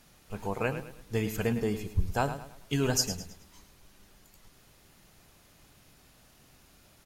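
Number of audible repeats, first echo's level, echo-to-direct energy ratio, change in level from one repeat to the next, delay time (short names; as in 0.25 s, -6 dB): 3, -11.0 dB, -10.5 dB, -9.0 dB, 0.107 s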